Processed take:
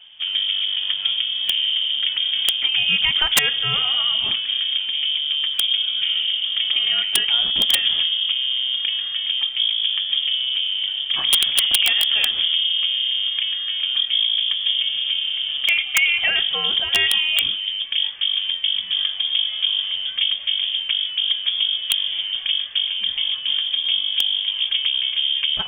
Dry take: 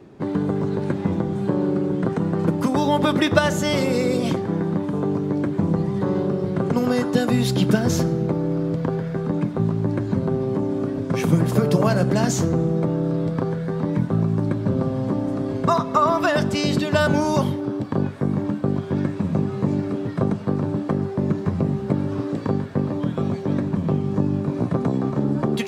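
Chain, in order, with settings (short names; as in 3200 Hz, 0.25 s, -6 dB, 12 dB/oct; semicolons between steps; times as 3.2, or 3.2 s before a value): inverted band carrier 3400 Hz; wrapped overs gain 7 dB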